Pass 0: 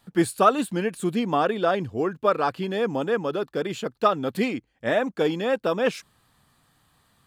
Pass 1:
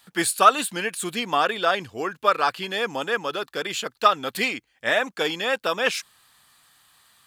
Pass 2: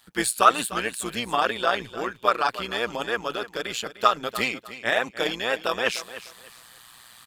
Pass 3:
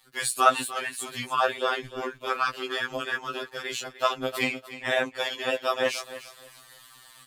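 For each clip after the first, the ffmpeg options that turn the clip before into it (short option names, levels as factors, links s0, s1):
-af "tiltshelf=f=730:g=-10"
-af "areverse,acompressor=mode=upward:threshold=0.0141:ratio=2.5,areverse,tremolo=f=120:d=0.75,aecho=1:1:301|602|903:0.188|0.0471|0.0118,volume=1.19"
-af "afftfilt=real='re*2.45*eq(mod(b,6),0)':imag='im*2.45*eq(mod(b,6),0)':win_size=2048:overlap=0.75"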